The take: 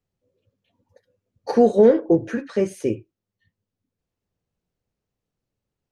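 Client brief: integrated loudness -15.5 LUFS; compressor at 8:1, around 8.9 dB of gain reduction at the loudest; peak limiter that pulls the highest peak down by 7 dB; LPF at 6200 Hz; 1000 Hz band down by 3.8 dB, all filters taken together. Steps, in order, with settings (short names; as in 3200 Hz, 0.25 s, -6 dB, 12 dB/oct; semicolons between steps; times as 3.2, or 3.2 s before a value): LPF 6200 Hz; bell 1000 Hz -6.5 dB; compressor 8:1, threshold -19 dBFS; gain +14.5 dB; limiter -4 dBFS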